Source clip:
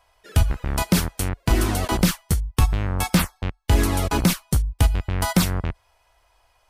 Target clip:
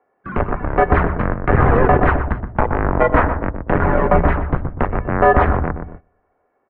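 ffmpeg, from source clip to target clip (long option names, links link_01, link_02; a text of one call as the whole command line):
ffmpeg -i in.wav -filter_complex "[0:a]bandreject=frequency=60:width_type=h:width=6,bandreject=frequency=120:width_type=h:width=6,bandreject=frequency=180:width_type=h:width=6,bandreject=frequency=240:width_type=h:width=6,bandreject=frequency=300:width_type=h:width=6,bandreject=frequency=360:width_type=h:width=6,bandreject=frequency=420:width_type=h:width=6,asettb=1/sr,asplit=3[link_01][link_02][link_03];[link_01]atrim=end=5.054[link_04];[link_02]atrim=start=5.05:end=5.46,asetpts=PTS-STARTPTS,afade=type=in:duration=0.004:curve=qsin,afade=type=out:start_time=0.406:duration=0.004:curve=qsin,highpass=frequency=81:width=0.5412,highpass=frequency=81:width=1.3066[link_05];[link_03]atrim=start=5.456[link_06];[link_04][link_05]acrossfade=duration=0.004:curve1=hsin:curve2=qsin[link_07];[link_07][link_06]acrossfade=duration=0.004:curve1=qsin:curve2=hsin,asoftclip=type=hard:threshold=-21dB,asettb=1/sr,asplit=3[link_08][link_09][link_10];[link_08]atrim=end=3.764[link_11];[link_09]atrim=start=3.76:end=4.4,asetpts=PTS-STARTPTS,afade=type=in:duration=0.004:curve=qsin,afade=type=out:start_time=0.636:duration=0.004:curve=qsin,acompressor=threshold=-25dB:ratio=6[link_12];[link_10]atrim=start=4.396[link_13];[link_11][link_12]acrossfade=duration=0.004:curve1=hsin:curve2=qsin[link_14];[link_14][link_13]acrossfade=duration=0.004:curve1=qsin:curve2=hsin,asplit=2[link_15][link_16];[link_16]adelay=122,lowpass=frequency=980:poles=1,volume=-5dB,asplit=2[link_17][link_18];[link_18]adelay=122,lowpass=frequency=980:poles=1,volume=0.45,asplit=2[link_19][link_20];[link_20]adelay=122,lowpass=frequency=980:poles=1,volume=0.45,asplit=2[link_21][link_22];[link_22]adelay=122,lowpass=frequency=980:poles=1,volume=0.45,asplit=2[link_23][link_24];[link_24]adelay=122,lowpass=frequency=980:poles=1,volume=0.45,asplit=2[link_25][link_26];[link_26]adelay=122,lowpass=frequency=980:poles=1,volume=0.45[link_27];[link_15][link_17][link_19][link_21][link_23][link_25][link_27]amix=inputs=7:normalize=0,highpass=frequency=220:width_type=q:width=0.5412,highpass=frequency=220:width_type=q:width=1.307,lowpass=frequency=2000:width_type=q:width=0.5176,lowpass=frequency=2000:width_type=q:width=0.7071,lowpass=frequency=2000:width_type=q:width=1.932,afreqshift=-250,agate=range=-19dB:threshold=-51dB:ratio=16:detection=peak,alimiter=level_in=18.5dB:limit=-1dB:release=50:level=0:latency=1,volume=-1dB" out.wav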